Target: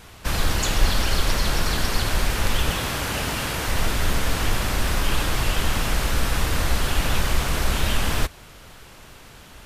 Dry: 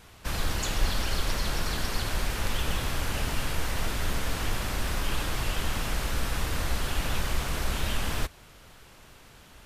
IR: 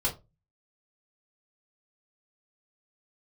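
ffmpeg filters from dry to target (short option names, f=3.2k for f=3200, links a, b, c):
-filter_complex "[0:a]asettb=1/sr,asplit=3[a][b][c];[a]atrim=end=2.694[d];[b]atrim=start=2.69:end=3.68,asetpts=PTS-STARTPTS,afade=t=in:d=0.004:c=qsin,afade=t=out:st=0.986:d=0.004:c=qsin,highpass=f=110:p=1[e];[c]atrim=start=3.676[f];[d][e]acrossfade=d=0.004:c1=hsin:c2=qsin[g];[g][f]acrossfade=d=0.004:c1=qsin:c2=hsin,volume=7dB"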